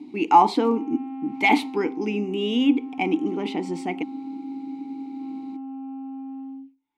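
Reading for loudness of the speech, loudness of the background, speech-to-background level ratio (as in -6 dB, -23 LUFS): -23.0 LUFS, -35.5 LUFS, 12.5 dB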